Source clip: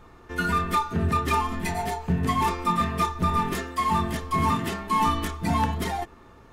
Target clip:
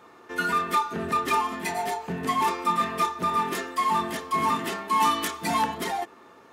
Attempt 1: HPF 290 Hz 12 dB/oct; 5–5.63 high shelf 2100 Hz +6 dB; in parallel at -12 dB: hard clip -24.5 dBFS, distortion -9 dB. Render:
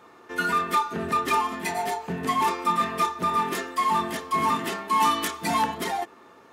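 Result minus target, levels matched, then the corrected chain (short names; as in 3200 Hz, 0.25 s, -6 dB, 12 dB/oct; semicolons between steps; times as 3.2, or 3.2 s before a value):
hard clip: distortion -6 dB
HPF 290 Hz 12 dB/oct; 5–5.63 high shelf 2100 Hz +6 dB; in parallel at -12 dB: hard clip -33.5 dBFS, distortion -3 dB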